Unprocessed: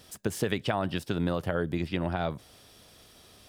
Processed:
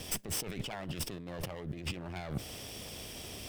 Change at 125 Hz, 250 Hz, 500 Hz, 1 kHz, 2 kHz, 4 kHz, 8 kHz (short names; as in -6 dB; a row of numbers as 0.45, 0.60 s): -7.5, -11.0, -12.5, -11.5, -8.0, -1.0, +5.0 dB